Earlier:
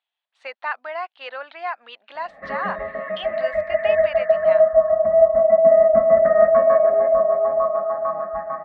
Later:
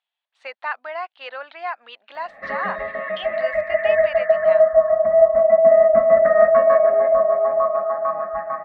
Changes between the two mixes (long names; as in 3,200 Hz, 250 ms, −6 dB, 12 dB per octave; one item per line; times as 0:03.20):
background: remove low-pass filter 1,300 Hz 6 dB per octave
master: add parametric band 92 Hz −3.5 dB 2.9 octaves